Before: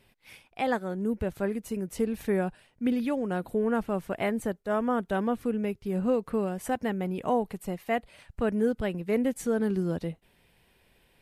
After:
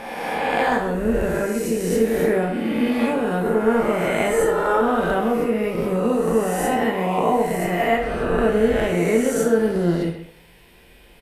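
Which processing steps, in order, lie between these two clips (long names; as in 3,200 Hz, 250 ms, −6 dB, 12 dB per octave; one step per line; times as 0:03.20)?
peak hold with a rise ahead of every peak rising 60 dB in 1.77 s
0:04.30–0:04.81: comb filter 2.2 ms, depth 82%
in parallel at +2.5 dB: downward compressor, threshold −33 dBFS, peak gain reduction 13 dB
on the sum: far-end echo of a speakerphone 130 ms, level −10 dB
dense smooth reverb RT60 0.5 s, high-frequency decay 0.85×, DRR 0.5 dB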